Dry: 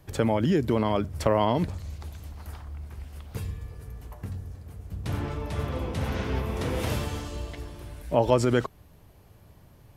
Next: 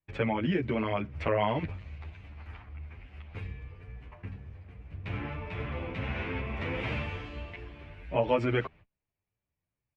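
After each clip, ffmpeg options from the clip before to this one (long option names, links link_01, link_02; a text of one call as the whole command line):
ffmpeg -i in.wav -filter_complex "[0:a]agate=range=-30dB:threshold=-45dB:ratio=16:detection=peak,lowpass=frequency=2400:width_type=q:width=3.9,asplit=2[link_01][link_02];[link_02]adelay=9.7,afreqshift=2.4[link_03];[link_01][link_03]amix=inputs=2:normalize=1,volume=-3dB" out.wav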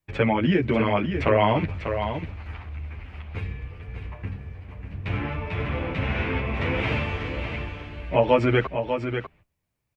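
ffmpeg -i in.wav -af "aecho=1:1:595:0.422,volume=7.5dB" out.wav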